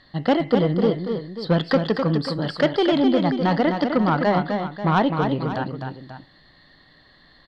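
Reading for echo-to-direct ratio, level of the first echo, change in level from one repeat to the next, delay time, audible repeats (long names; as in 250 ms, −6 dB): −5.0 dB, −6.0 dB, repeats not evenly spaced, 255 ms, 2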